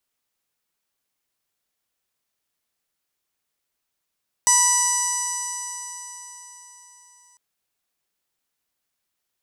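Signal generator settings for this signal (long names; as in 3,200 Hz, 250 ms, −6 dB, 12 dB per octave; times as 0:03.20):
stiff-string partials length 2.90 s, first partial 974 Hz, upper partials −7/−16/−18/−9/4/−5.5/3/−9/−8/−19.5/−19.5 dB, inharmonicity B 0.00089, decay 4.27 s, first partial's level −20.5 dB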